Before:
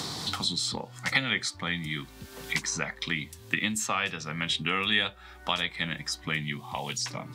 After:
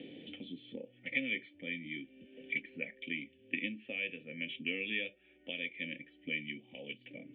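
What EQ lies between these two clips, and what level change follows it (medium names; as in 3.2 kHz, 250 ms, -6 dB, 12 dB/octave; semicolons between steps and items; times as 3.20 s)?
dynamic bell 2.2 kHz, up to +5 dB, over -41 dBFS, Q 4.1; cascade formant filter i; vowel filter e; +18.0 dB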